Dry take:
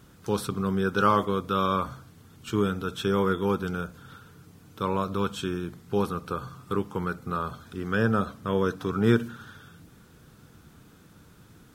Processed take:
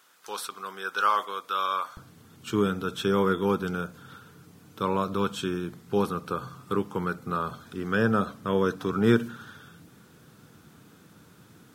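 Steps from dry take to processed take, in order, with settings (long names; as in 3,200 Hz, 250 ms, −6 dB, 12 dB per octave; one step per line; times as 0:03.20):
high-pass filter 900 Hz 12 dB per octave, from 0:01.97 120 Hz
level +1 dB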